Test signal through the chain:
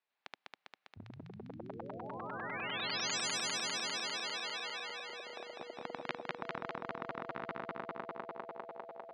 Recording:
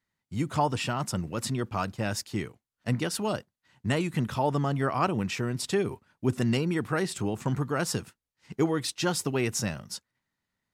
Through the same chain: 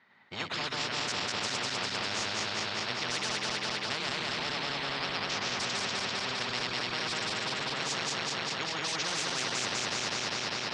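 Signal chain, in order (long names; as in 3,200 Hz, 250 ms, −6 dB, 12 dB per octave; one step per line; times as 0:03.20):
feedback delay that plays each chunk backwards 100 ms, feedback 84%, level −0.5 dB
loudspeaker in its box 270–3,500 Hz, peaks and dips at 310 Hz −8 dB, 520 Hz −4 dB, 790 Hz +3 dB, 3,000 Hz −4 dB
every bin compressed towards the loudest bin 10 to 1
level −5 dB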